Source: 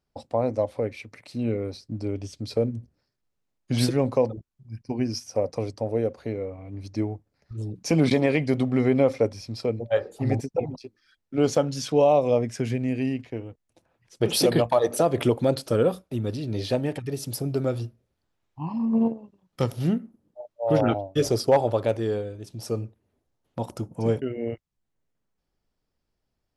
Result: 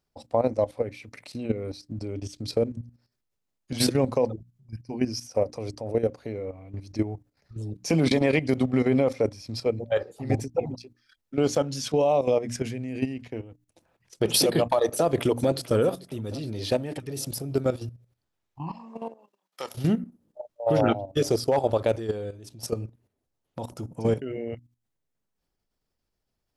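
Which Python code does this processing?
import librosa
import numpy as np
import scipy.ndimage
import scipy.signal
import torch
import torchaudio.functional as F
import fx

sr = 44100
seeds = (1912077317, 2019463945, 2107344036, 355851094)

y = fx.echo_throw(x, sr, start_s=14.85, length_s=0.86, ms=440, feedback_pct=55, wet_db=-17.0)
y = fx.highpass(y, sr, hz=680.0, slope=12, at=(18.71, 19.75))
y = fx.high_shelf(y, sr, hz=4300.0, db=4.0)
y = fx.hum_notches(y, sr, base_hz=60, count=5)
y = fx.level_steps(y, sr, step_db=12)
y = y * 10.0 ** (3.5 / 20.0)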